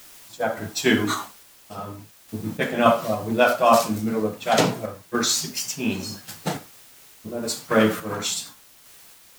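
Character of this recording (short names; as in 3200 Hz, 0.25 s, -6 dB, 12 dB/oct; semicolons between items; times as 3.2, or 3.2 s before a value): a quantiser's noise floor 8-bit, dither triangular; random-step tremolo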